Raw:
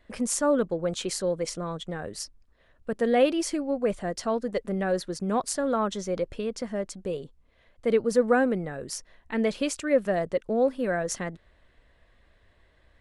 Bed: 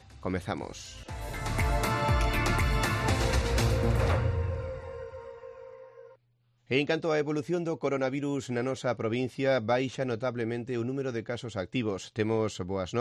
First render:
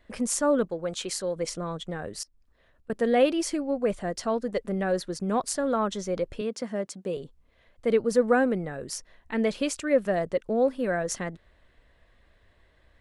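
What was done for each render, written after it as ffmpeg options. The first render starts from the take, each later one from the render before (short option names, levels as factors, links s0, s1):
-filter_complex "[0:a]asettb=1/sr,asplit=3[s0][s1][s2];[s0]atrim=end=0.654[s3];[s1]atrim=start=0.65:end=1.36,asetpts=PTS-STARTPTS,afade=t=in:d=0.004:c=qsin,afade=t=out:st=0.706:d=0.004:c=qsin,lowshelf=f=490:g=-6[s4];[s2]atrim=start=1.356[s5];[s3][s4]acrossfade=d=0.004:c1=hsin:c2=qsin[s6];[s6][s5]acrossfade=d=0.004:c1=qsin:c2=hsin,asettb=1/sr,asplit=3[s7][s8][s9];[s7]atrim=end=2.234[s10];[s8]atrim=start=2.23:end=2.9,asetpts=PTS-STARTPTS,afade=t=in:d=0.004:c=qsin,afade=t=out:st=0.666:d=0.004:c=qsin,acompressor=threshold=0.00126:ratio=5:attack=3.2:release=140:knee=1:detection=peak[s11];[s9]atrim=start=2.896[s12];[s10][s11]acrossfade=d=0.004:c1=hsin:c2=qsin[s13];[s13][s12]acrossfade=d=0.004:c1=qsin:c2=hsin,asettb=1/sr,asplit=3[s14][s15][s16];[s14]atrim=end=6.414[s17];[s15]atrim=start=6.41:end=7.17,asetpts=PTS-STARTPTS,afade=t=in:d=0.004:c=qsin,afade=t=out:st=0.756:d=0.004:c=qsin,highpass=f=130:w=0.5412,highpass=f=130:w=1.3066[s18];[s16]atrim=start=7.166[s19];[s17][s18]acrossfade=d=0.004:c1=hsin:c2=qsin[s20];[s20][s19]acrossfade=d=0.004:c1=qsin:c2=hsin"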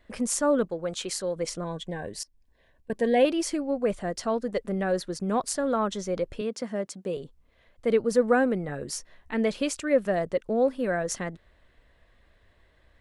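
-filter_complex "[0:a]asettb=1/sr,asplit=3[s0][s1][s2];[s0]atrim=end=1.644[s3];[s1]atrim=start=1.64:end=3.25,asetpts=PTS-STARTPTS,afade=t=in:d=0.004:c=qsin,afade=t=out:st=1.606:d=0.004:c=qsin,asuperstop=centerf=1300:order=20:qfactor=4.1[s4];[s2]atrim=start=3.246[s5];[s3][s4]acrossfade=d=0.004:c1=hsin:c2=qsin[s6];[s6][s5]acrossfade=d=0.004:c1=qsin:c2=hsin,asettb=1/sr,asplit=3[s7][s8][s9];[s7]atrim=end=8.674[s10];[s8]atrim=start=8.67:end=9.34,asetpts=PTS-STARTPTS,afade=t=in:d=0.004:c=qsin,afade=t=out:st=0.666:d=0.004:c=qsin,asplit=2[s11][s12];[s12]adelay=14,volume=0.562[s13];[s11][s13]amix=inputs=2:normalize=0,atrim=end_sample=29547[s14];[s9]atrim=start=9.336[s15];[s10][s14]acrossfade=d=0.004:c1=hsin:c2=qsin[s16];[s16][s15]acrossfade=d=0.004:c1=qsin:c2=hsin"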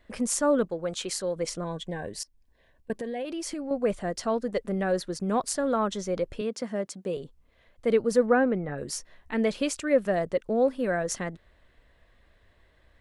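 -filter_complex "[0:a]asettb=1/sr,asplit=3[s0][s1][s2];[s0]atrim=end=2.924[s3];[s1]atrim=start=2.92:end=3.71,asetpts=PTS-STARTPTS,afade=t=in:d=0.004:c=qsin,afade=t=out:st=0.786:d=0.004:c=qsin,acompressor=threshold=0.0316:ratio=8:attack=3.2:release=140:knee=1:detection=peak[s4];[s2]atrim=start=3.706[s5];[s3][s4]acrossfade=d=0.004:c1=hsin:c2=qsin[s6];[s6][s5]acrossfade=d=0.004:c1=qsin:c2=hsin,asettb=1/sr,asplit=3[s7][s8][s9];[s7]atrim=end=8.264[s10];[s8]atrim=start=8.26:end=8.78,asetpts=PTS-STARTPTS,afade=t=in:d=0.004:c=qsin,afade=t=out:st=0.516:d=0.004:c=qsin,lowpass=2700[s11];[s9]atrim=start=8.776[s12];[s10][s11]acrossfade=d=0.004:c1=hsin:c2=qsin[s13];[s13][s12]acrossfade=d=0.004:c1=qsin:c2=hsin"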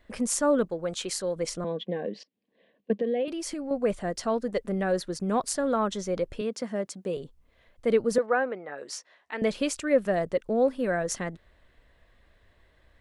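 -filter_complex "[0:a]asettb=1/sr,asplit=3[s0][s1][s2];[s0]atrim=end=1.644[s3];[s1]atrim=start=1.64:end=3.28,asetpts=PTS-STARTPTS,afade=t=in:d=0.004:c=qsin,afade=t=out:st=1.636:d=0.004:c=qsin,highpass=f=190:w=0.5412,highpass=f=190:w=1.3066,equalizer=f=200:t=q:w=4:g=10,equalizer=f=290:t=q:w=4:g=3,equalizer=f=480:t=q:w=4:g=8,equalizer=f=930:t=q:w=4:g=-7,equalizer=f=1500:t=q:w=4:g=-7,equalizer=f=3000:t=q:w=4:g=3,lowpass=f=3800:w=0.5412,lowpass=f=3800:w=1.3066[s4];[s2]atrim=start=3.276[s5];[s3][s4]acrossfade=d=0.004:c1=hsin:c2=qsin[s6];[s6][s5]acrossfade=d=0.004:c1=qsin:c2=hsin,asettb=1/sr,asplit=3[s7][s8][s9];[s7]atrim=end=8.184[s10];[s8]atrim=start=8.18:end=9.42,asetpts=PTS-STARTPTS,afade=t=in:d=0.004:c=qsin,afade=t=out:st=1.236:d=0.004:c=qsin,highpass=530,lowpass=6500[s11];[s9]atrim=start=9.416[s12];[s10][s11]acrossfade=d=0.004:c1=hsin:c2=qsin[s13];[s13][s12]acrossfade=d=0.004:c1=qsin:c2=hsin"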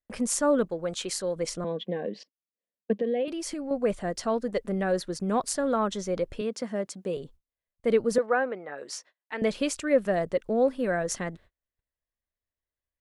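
-af "agate=range=0.02:threshold=0.00316:ratio=16:detection=peak"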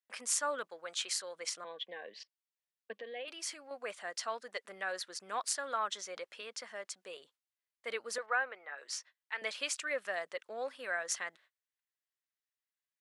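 -af "highpass=1300,highshelf=f=8800:g=-7.5"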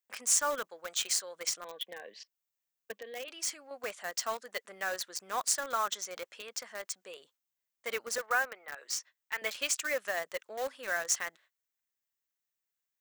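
-filter_complex "[0:a]asplit=2[s0][s1];[s1]acrusher=bits=5:mix=0:aa=0.000001,volume=0.398[s2];[s0][s2]amix=inputs=2:normalize=0,aexciter=amount=1.8:drive=3.3:freq=6000"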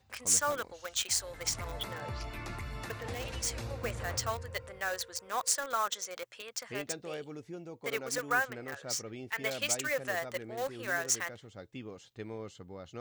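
-filter_complex "[1:a]volume=0.2[s0];[0:a][s0]amix=inputs=2:normalize=0"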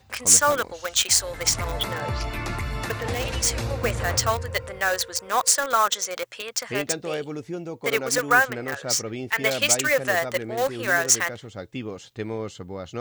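-af "volume=3.76,alimiter=limit=0.891:level=0:latency=1"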